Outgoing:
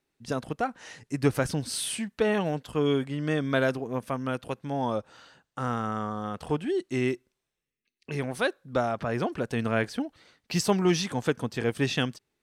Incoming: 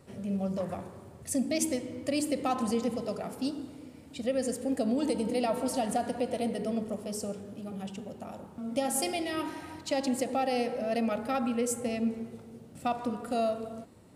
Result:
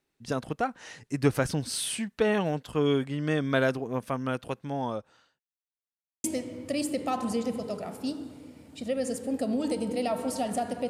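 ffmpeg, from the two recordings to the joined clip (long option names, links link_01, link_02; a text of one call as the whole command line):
ffmpeg -i cue0.wav -i cue1.wav -filter_complex "[0:a]apad=whole_dur=10.89,atrim=end=10.89,asplit=2[link_01][link_02];[link_01]atrim=end=5.4,asetpts=PTS-STARTPTS,afade=type=out:start_time=4.31:duration=1.09:curve=qsin[link_03];[link_02]atrim=start=5.4:end=6.24,asetpts=PTS-STARTPTS,volume=0[link_04];[1:a]atrim=start=1.62:end=6.27,asetpts=PTS-STARTPTS,afade=type=in:duration=0.004:curve=hsin[link_05];[link_03][link_04][link_05]concat=n=3:v=0:a=1" out.wav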